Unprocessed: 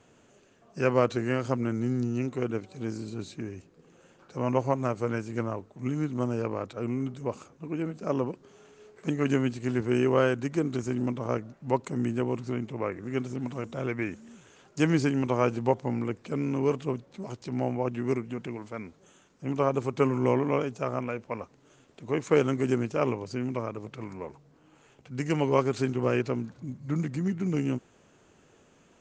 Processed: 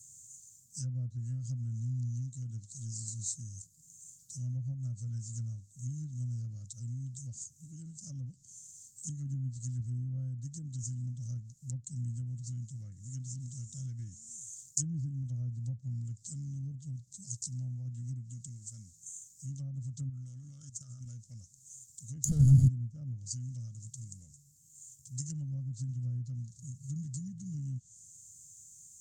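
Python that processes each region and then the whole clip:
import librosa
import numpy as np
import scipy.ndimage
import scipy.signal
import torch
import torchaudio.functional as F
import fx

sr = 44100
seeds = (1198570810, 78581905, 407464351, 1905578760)

y = fx.chain(x, sr, fx.self_delay(depth_ms=0.052),
    fx.peak_eq(hz=1300.0, db=13.0, octaves=0.63),
    fx.level_steps(step_db=17), at=(20.09, 21.06))
y = fx.chain(y, sr, fx.zero_step(step_db=-29.5),
    fx.ripple_eq(per_octave=1.8, db=14),
    fx.leveller(passes=5), at=(22.24, 22.68))
y = fx.env_lowpass_down(y, sr, base_hz=710.0, full_db=-20.5)
y = scipy.signal.sosfilt(scipy.signal.ellip(3, 1.0, 50, [120.0, 7400.0], 'bandstop', fs=sr, output='sos'), y)
y = fx.riaa(y, sr, side='recording')
y = y * librosa.db_to_amplitude(12.0)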